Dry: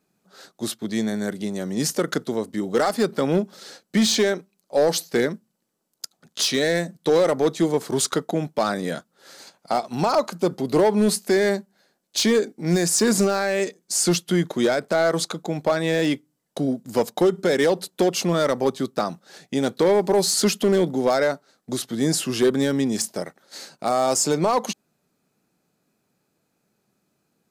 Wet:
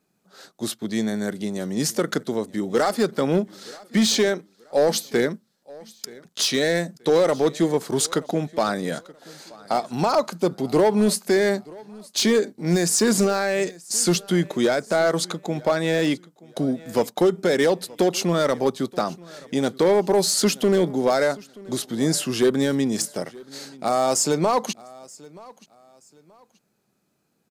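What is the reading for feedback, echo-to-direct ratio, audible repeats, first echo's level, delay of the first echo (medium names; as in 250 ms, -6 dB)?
30%, -22.0 dB, 2, -22.5 dB, 928 ms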